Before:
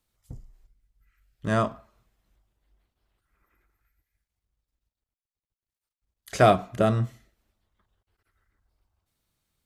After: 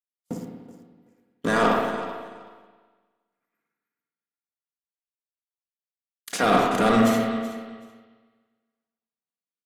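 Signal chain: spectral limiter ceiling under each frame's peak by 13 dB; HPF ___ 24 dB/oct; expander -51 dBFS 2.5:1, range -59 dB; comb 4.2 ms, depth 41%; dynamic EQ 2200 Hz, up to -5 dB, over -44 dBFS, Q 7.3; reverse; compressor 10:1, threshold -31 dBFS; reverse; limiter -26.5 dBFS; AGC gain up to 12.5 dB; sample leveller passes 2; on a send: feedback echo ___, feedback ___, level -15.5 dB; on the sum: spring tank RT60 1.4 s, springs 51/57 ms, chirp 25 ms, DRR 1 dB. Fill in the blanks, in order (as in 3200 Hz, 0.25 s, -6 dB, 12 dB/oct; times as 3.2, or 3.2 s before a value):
150 Hz, 0.378 s, 18%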